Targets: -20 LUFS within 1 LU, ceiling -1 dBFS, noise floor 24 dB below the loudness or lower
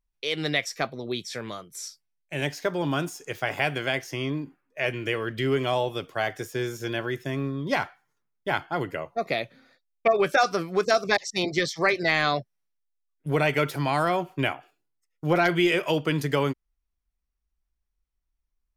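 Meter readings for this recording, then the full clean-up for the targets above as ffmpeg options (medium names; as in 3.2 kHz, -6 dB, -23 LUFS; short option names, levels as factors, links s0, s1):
loudness -26.5 LUFS; peak level -9.0 dBFS; loudness target -20.0 LUFS
-> -af "volume=2.11"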